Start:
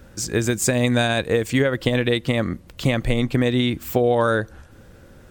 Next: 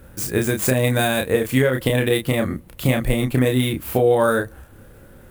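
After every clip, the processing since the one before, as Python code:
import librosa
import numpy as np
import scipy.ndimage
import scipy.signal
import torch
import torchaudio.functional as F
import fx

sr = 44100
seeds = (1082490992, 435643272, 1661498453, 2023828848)

y = scipy.signal.medfilt(x, 5)
y = fx.high_shelf_res(y, sr, hz=7800.0, db=12.5, q=1.5)
y = fx.doubler(y, sr, ms=31.0, db=-4)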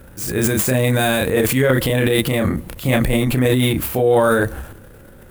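y = fx.transient(x, sr, attack_db=-4, sustain_db=11)
y = y * librosa.db_to_amplitude(1.5)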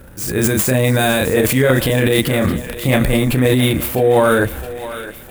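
y = fx.echo_thinned(x, sr, ms=662, feedback_pct=62, hz=380.0, wet_db=-13.0)
y = y * librosa.db_to_amplitude(2.0)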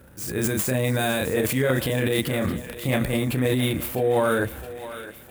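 y = scipy.signal.sosfilt(scipy.signal.butter(2, 58.0, 'highpass', fs=sr, output='sos'), x)
y = y * librosa.db_to_amplitude(-8.5)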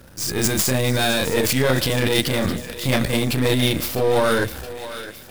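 y = np.where(x < 0.0, 10.0 ** (-7.0 / 20.0) * x, x)
y = fx.peak_eq(y, sr, hz=5000.0, db=12.0, octaves=1.0)
y = y * librosa.db_to_amplitude(5.5)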